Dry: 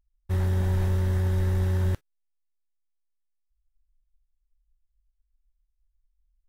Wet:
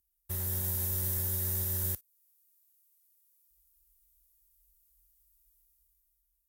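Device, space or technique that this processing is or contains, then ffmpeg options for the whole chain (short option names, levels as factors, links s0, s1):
FM broadcast chain: -filter_complex "[0:a]highpass=45,dynaudnorm=f=120:g=13:m=3.55,acrossover=split=410|4200[s0][s1][s2];[s0]acompressor=threshold=0.0501:ratio=4[s3];[s1]acompressor=threshold=0.00891:ratio=4[s4];[s2]acompressor=threshold=0.00501:ratio=4[s5];[s3][s4][s5]amix=inputs=3:normalize=0,aemphasis=mode=production:type=50fm,alimiter=limit=0.112:level=0:latency=1:release=343,asoftclip=type=hard:threshold=0.0841,lowpass=f=15000:w=0.5412,lowpass=f=15000:w=1.3066,aemphasis=mode=production:type=50fm,volume=0.376"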